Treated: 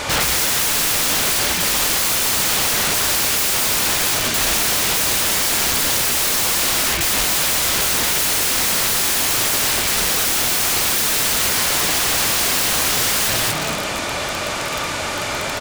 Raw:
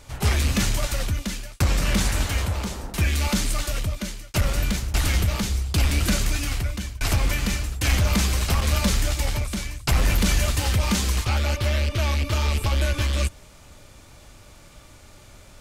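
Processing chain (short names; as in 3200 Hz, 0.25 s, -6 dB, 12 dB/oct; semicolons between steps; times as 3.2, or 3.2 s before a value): overdrive pedal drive 31 dB, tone 3100 Hz, clips at -12.5 dBFS; frequency-shifting echo 0.234 s, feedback 38%, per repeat +42 Hz, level -4 dB; wrapped overs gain 19.5 dB; gain +6 dB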